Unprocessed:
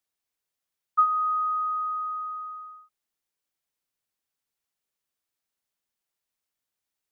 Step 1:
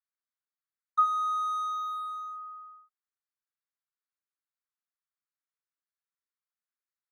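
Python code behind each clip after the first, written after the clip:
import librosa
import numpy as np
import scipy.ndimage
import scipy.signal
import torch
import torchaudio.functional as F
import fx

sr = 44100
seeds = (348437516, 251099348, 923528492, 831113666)

y = fx.wiener(x, sr, points=15)
y = scipy.signal.sosfilt(scipy.signal.butter(6, 1100.0, 'highpass', fs=sr, output='sos'), y)
y = F.gain(torch.from_numpy(y), -2.0).numpy()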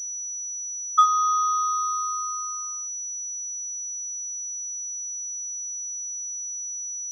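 y = fx.small_body(x, sr, hz=(1400.0, 2200.0), ring_ms=25, db=14)
y = fx.env_lowpass(y, sr, base_hz=1200.0, full_db=-23.5)
y = fx.pwm(y, sr, carrier_hz=5900.0)
y = F.gain(torch.from_numpy(y), 2.5).numpy()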